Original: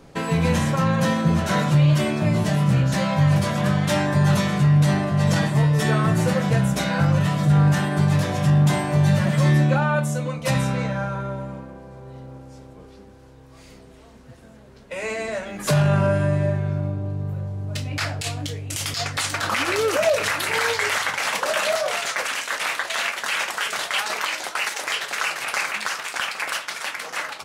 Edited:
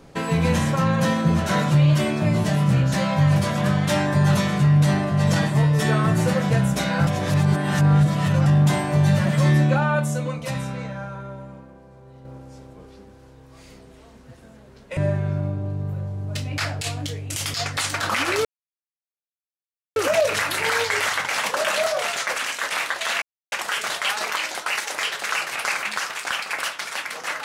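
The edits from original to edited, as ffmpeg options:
ffmpeg -i in.wav -filter_complex "[0:a]asplit=9[link_01][link_02][link_03][link_04][link_05][link_06][link_07][link_08][link_09];[link_01]atrim=end=7.072[link_10];[link_02]atrim=start=7.068:end=8.462,asetpts=PTS-STARTPTS,areverse[link_11];[link_03]atrim=start=8.458:end=10.452[link_12];[link_04]atrim=start=10.448:end=12.252,asetpts=PTS-STARTPTS,volume=-6.5dB[link_13];[link_05]atrim=start=12.248:end=14.972[link_14];[link_06]atrim=start=16.368:end=19.85,asetpts=PTS-STARTPTS,afade=type=out:start_time=3.478:duration=0.004:curve=hsin,apad=pad_dur=1.51[link_15];[link_07]atrim=start=19.85:end=23.11,asetpts=PTS-STARTPTS,afade=type=in:duration=0.004:curve=hsin,afade=type=out:start_time=3.256:duration=0.004:curve=hsin[link_16];[link_08]atrim=start=23.11:end=23.41,asetpts=PTS-STARTPTS,volume=0[link_17];[link_09]atrim=start=23.41,asetpts=PTS-STARTPTS,afade=type=in:duration=0.004:curve=hsin[link_18];[link_10][link_11]acrossfade=duration=0.004:curve1=hsin:curve2=hsin[link_19];[link_19][link_12]acrossfade=duration=0.004:curve1=hsin:curve2=hsin[link_20];[link_20][link_13]acrossfade=duration=0.004:curve1=hsin:curve2=hsin[link_21];[link_21][link_14]acrossfade=duration=0.004:curve1=hsin:curve2=hsin[link_22];[link_15][link_16][link_17][link_18]concat=n=4:v=0:a=1[link_23];[link_22][link_23]acrossfade=duration=0.004:curve1=hsin:curve2=hsin" out.wav

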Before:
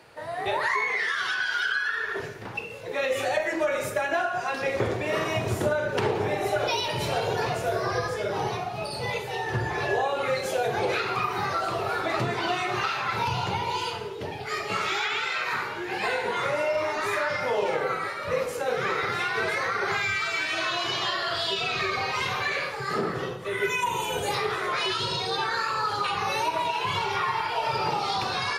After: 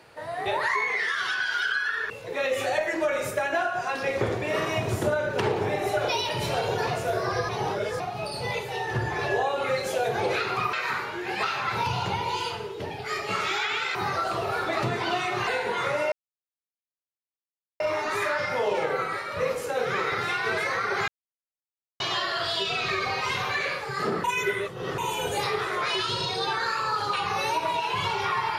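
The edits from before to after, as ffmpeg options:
ffmpeg -i in.wav -filter_complex "[0:a]asplit=13[link_01][link_02][link_03][link_04][link_05][link_06][link_07][link_08][link_09][link_10][link_11][link_12][link_13];[link_01]atrim=end=2.102[link_14];[link_02]atrim=start=2.688:end=8.082[link_15];[link_03]atrim=start=8.078:end=8.592,asetpts=PTS-STARTPTS,areverse[link_16];[link_04]atrim=start=8.588:end=11.322[link_17];[link_05]atrim=start=15.358:end=16.062[link_18];[link_06]atrim=start=12.838:end=15.362[link_19];[link_07]atrim=start=11.318:end=12.842[link_20];[link_08]atrim=start=16.058:end=16.71,asetpts=PTS-STARTPTS,afade=type=out:start_time=0.648:duration=0.004:curve=hsin,apad=pad_dur=1.68[link_21];[link_09]atrim=start=16.71:end=19.99,asetpts=PTS-STARTPTS,afade=type=in:duration=0.004:curve=hsin,afade=type=out:start_time=3.276:duration=0.004:curve=hsin[link_22];[link_10]atrim=start=19.99:end=20.91,asetpts=PTS-STARTPTS,volume=0[link_23];[link_11]atrim=start=20.91:end=23.152,asetpts=PTS-STARTPTS,afade=type=in:duration=0.004:curve=hsin[link_24];[link_12]atrim=start=23.148:end=23.892,asetpts=PTS-STARTPTS,areverse[link_25];[link_13]atrim=start=23.888[link_26];[link_14][link_15]acrossfade=duration=0.004:curve1=hsin:curve2=hsin[link_27];[link_27][link_16]acrossfade=duration=0.004:curve1=hsin:curve2=hsin[link_28];[link_28][link_17]acrossfade=duration=0.004:curve1=hsin:curve2=hsin[link_29];[link_29][link_18]acrossfade=duration=0.004:curve1=hsin:curve2=hsin[link_30];[link_30][link_19]acrossfade=duration=0.004:curve1=hsin:curve2=hsin[link_31];[link_31][link_20]acrossfade=duration=0.004:curve1=hsin:curve2=hsin[link_32];[link_21][link_22][link_23][link_24]concat=n=4:v=0:a=1[link_33];[link_32][link_33]acrossfade=duration=0.004:curve1=hsin:curve2=hsin[link_34];[link_34][link_25]acrossfade=duration=0.004:curve1=hsin:curve2=hsin[link_35];[link_35][link_26]acrossfade=duration=0.004:curve1=hsin:curve2=hsin" out.wav

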